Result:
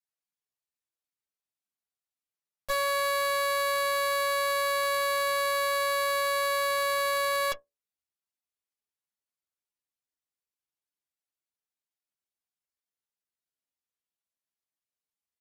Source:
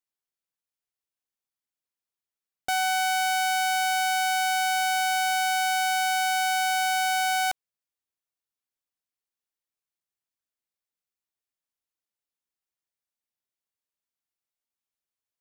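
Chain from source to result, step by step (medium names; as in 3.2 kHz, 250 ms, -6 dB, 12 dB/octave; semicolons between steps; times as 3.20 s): inharmonic resonator 90 Hz, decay 0.22 s, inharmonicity 0.002; Chebyshev shaper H 4 -7 dB, 5 -31 dB, 7 -9 dB, 8 -32 dB, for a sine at -22 dBFS; pitch shift -5 st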